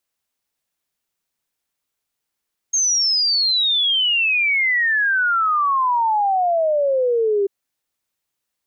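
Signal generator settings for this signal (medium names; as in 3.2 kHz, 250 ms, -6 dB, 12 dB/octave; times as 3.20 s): log sweep 6.5 kHz -> 390 Hz 4.74 s -15 dBFS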